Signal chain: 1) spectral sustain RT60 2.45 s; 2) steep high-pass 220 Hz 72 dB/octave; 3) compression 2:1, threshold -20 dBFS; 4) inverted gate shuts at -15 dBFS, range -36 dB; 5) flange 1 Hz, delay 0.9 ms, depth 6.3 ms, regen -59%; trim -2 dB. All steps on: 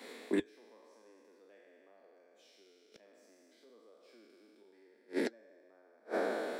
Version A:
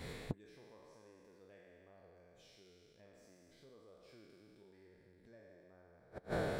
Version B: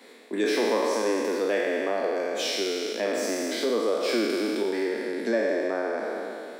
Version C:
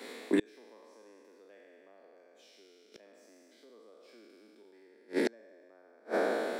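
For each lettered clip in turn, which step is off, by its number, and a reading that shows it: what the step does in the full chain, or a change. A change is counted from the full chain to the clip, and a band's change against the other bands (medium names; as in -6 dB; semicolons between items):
2, 250 Hz band -4.5 dB; 4, momentary loudness spread change -1 LU; 5, loudness change +4.0 LU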